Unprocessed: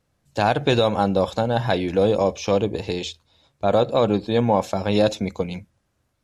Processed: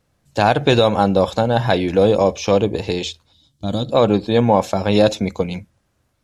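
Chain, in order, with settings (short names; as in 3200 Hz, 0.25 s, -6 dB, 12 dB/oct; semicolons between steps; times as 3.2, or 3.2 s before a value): spectral gain 3.33–3.92, 340–2900 Hz -14 dB; gain +4.5 dB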